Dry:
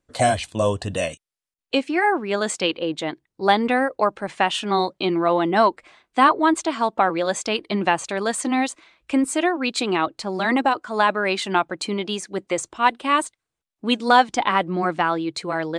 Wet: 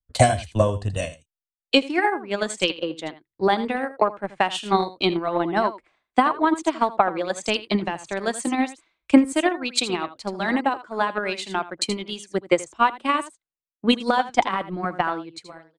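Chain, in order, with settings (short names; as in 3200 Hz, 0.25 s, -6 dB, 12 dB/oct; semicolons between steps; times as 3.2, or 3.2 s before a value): ending faded out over 0.58 s; low shelf 63 Hz +10 dB; limiter -10.5 dBFS, peak gain reduction 8.5 dB; echo 81 ms -9 dB; transient shaper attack +10 dB, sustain -4 dB; three-band expander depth 70%; gain -4.5 dB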